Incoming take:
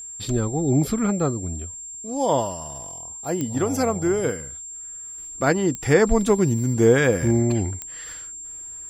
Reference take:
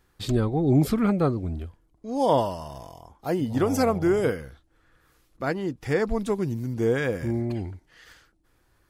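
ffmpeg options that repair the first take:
-af "adeclick=t=4,bandreject=f=7.4k:w=30,asetnsamples=n=441:p=0,asendcmd='5.18 volume volume -7.5dB',volume=0dB"

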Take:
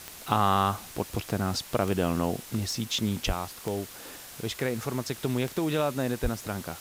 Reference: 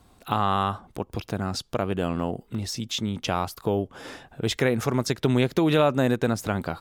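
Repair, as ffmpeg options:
-filter_complex "[0:a]adeclick=t=4,asplit=3[a][b][c];[a]afade=t=out:st=3.26:d=0.02[d];[b]highpass=f=140:w=0.5412,highpass=f=140:w=1.3066,afade=t=in:st=3.26:d=0.02,afade=t=out:st=3.38:d=0.02[e];[c]afade=t=in:st=3.38:d=0.02[f];[d][e][f]amix=inputs=3:normalize=0,asplit=3[g][h][i];[g]afade=t=out:st=6.22:d=0.02[j];[h]highpass=f=140:w=0.5412,highpass=f=140:w=1.3066,afade=t=in:st=6.22:d=0.02,afade=t=out:st=6.34:d=0.02[k];[i]afade=t=in:st=6.34:d=0.02[l];[j][k][l]amix=inputs=3:normalize=0,afwtdn=0.0063,asetnsamples=n=441:p=0,asendcmd='3.29 volume volume 7dB',volume=0dB"

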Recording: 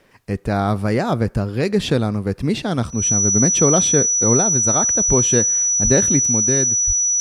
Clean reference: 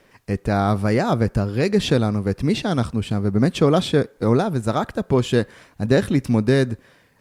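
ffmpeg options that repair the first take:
-filter_complex "[0:a]bandreject=f=5.9k:w=30,asplit=3[a][b][c];[a]afade=t=out:st=5.07:d=0.02[d];[b]highpass=f=140:w=0.5412,highpass=f=140:w=1.3066,afade=t=in:st=5.07:d=0.02,afade=t=out:st=5.19:d=0.02[e];[c]afade=t=in:st=5.19:d=0.02[f];[d][e][f]amix=inputs=3:normalize=0,asplit=3[g][h][i];[g]afade=t=out:st=5.83:d=0.02[j];[h]highpass=f=140:w=0.5412,highpass=f=140:w=1.3066,afade=t=in:st=5.83:d=0.02,afade=t=out:st=5.95:d=0.02[k];[i]afade=t=in:st=5.95:d=0.02[l];[j][k][l]amix=inputs=3:normalize=0,asplit=3[m][n][o];[m]afade=t=out:st=6.86:d=0.02[p];[n]highpass=f=140:w=0.5412,highpass=f=140:w=1.3066,afade=t=in:st=6.86:d=0.02,afade=t=out:st=6.98:d=0.02[q];[o]afade=t=in:st=6.98:d=0.02[r];[p][q][r]amix=inputs=3:normalize=0,asetnsamples=n=441:p=0,asendcmd='6.25 volume volume 4.5dB',volume=0dB"

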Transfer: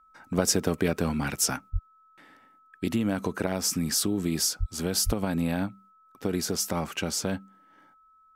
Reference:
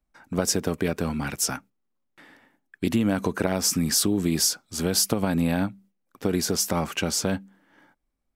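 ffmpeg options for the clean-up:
-filter_complex "[0:a]bandreject=f=1.3k:w=30,asplit=3[a][b][c];[a]afade=t=out:st=1.72:d=0.02[d];[b]highpass=f=140:w=0.5412,highpass=f=140:w=1.3066,afade=t=in:st=1.72:d=0.02,afade=t=out:st=1.84:d=0.02[e];[c]afade=t=in:st=1.84:d=0.02[f];[d][e][f]amix=inputs=3:normalize=0,asplit=3[g][h][i];[g]afade=t=out:st=4.59:d=0.02[j];[h]highpass=f=140:w=0.5412,highpass=f=140:w=1.3066,afade=t=in:st=4.59:d=0.02,afade=t=out:st=4.71:d=0.02[k];[i]afade=t=in:st=4.71:d=0.02[l];[j][k][l]amix=inputs=3:normalize=0,asplit=3[m][n][o];[m]afade=t=out:st=5.05:d=0.02[p];[n]highpass=f=140:w=0.5412,highpass=f=140:w=1.3066,afade=t=in:st=5.05:d=0.02,afade=t=out:st=5.17:d=0.02[q];[o]afade=t=in:st=5.17:d=0.02[r];[p][q][r]amix=inputs=3:normalize=0,asetnsamples=n=441:p=0,asendcmd='1.87 volume volume 4dB',volume=0dB"

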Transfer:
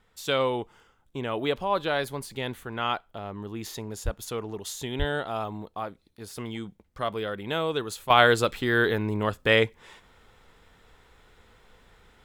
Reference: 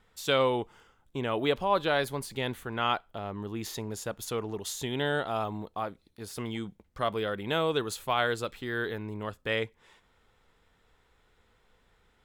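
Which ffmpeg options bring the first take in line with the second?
-filter_complex "[0:a]asplit=3[a][b][c];[a]afade=t=out:st=4.04:d=0.02[d];[b]highpass=f=140:w=0.5412,highpass=f=140:w=1.3066,afade=t=in:st=4.04:d=0.02,afade=t=out:st=4.16:d=0.02[e];[c]afade=t=in:st=4.16:d=0.02[f];[d][e][f]amix=inputs=3:normalize=0,asplit=3[g][h][i];[g]afade=t=out:st=4.98:d=0.02[j];[h]highpass=f=140:w=0.5412,highpass=f=140:w=1.3066,afade=t=in:st=4.98:d=0.02,afade=t=out:st=5.1:d=0.02[k];[i]afade=t=in:st=5.1:d=0.02[l];[j][k][l]amix=inputs=3:normalize=0,asetnsamples=n=441:p=0,asendcmd='8.1 volume volume -9.5dB',volume=0dB"

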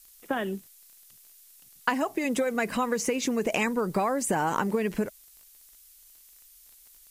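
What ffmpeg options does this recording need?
-af "adeclick=t=4,afftdn=nr=20:nf=-55"

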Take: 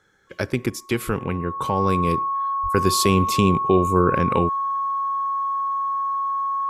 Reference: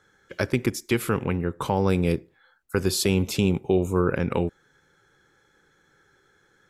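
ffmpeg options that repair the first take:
-filter_complex "[0:a]bandreject=f=1.1k:w=30,asplit=3[a][b][c];[a]afade=t=out:st=1.06:d=0.02[d];[b]highpass=f=140:w=0.5412,highpass=f=140:w=1.3066,afade=t=in:st=1.06:d=0.02,afade=t=out:st=1.18:d=0.02[e];[c]afade=t=in:st=1.18:d=0.02[f];[d][e][f]amix=inputs=3:normalize=0,asplit=3[g][h][i];[g]afade=t=out:st=2.62:d=0.02[j];[h]highpass=f=140:w=0.5412,highpass=f=140:w=1.3066,afade=t=in:st=2.62:d=0.02,afade=t=out:st=2.74:d=0.02[k];[i]afade=t=in:st=2.74:d=0.02[l];[j][k][l]amix=inputs=3:normalize=0,asetnsamples=n=441:p=0,asendcmd='2.17 volume volume -3.5dB',volume=0dB"

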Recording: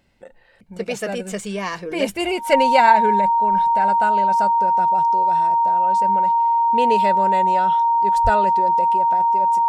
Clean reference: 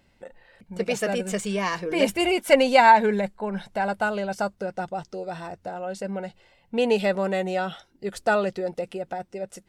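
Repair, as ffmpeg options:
-filter_complex "[0:a]bandreject=f=930:w=30,asplit=3[a][b][c];[a]afade=t=out:st=8.23:d=0.02[d];[b]highpass=f=140:w=0.5412,highpass=f=140:w=1.3066,afade=t=in:st=8.23:d=0.02,afade=t=out:st=8.35:d=0.02[e];[c]afade=t=in:st=8.35:d=0.02[f];[d][e][f]amix=inputs=3:normalize=0"

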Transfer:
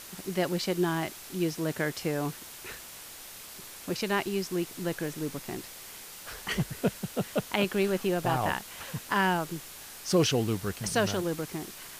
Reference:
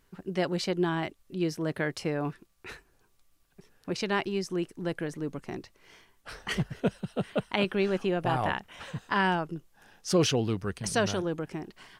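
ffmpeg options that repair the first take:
-af "adeclick=t=4,afwtdn=0.0063"

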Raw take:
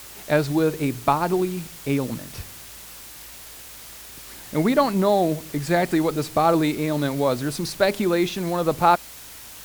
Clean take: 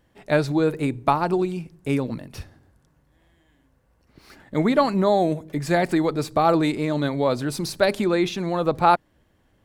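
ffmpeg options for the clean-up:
-af "bandreject=f=55.8:t=h:w=4,bandreject=f=111.6:t=h:w=4,bandreject=f=167.4:t=h:w=4,bandreject=f=223.2:t=h:w=4,afwtdn=0.0089"

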